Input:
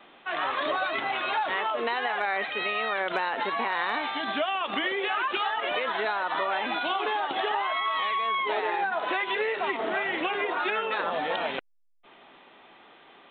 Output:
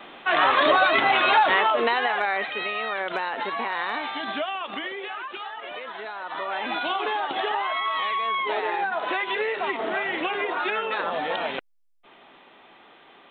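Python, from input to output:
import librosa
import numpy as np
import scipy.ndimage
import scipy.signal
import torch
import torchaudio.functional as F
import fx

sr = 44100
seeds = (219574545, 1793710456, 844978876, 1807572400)

y = fx.gain(x, sr, db=fx.line((1.42, 9.5), (2.69, 0.0), (4.31, 0.0), (5.31, -7.5), (6.1, -7.5), (6.73, 1.5)))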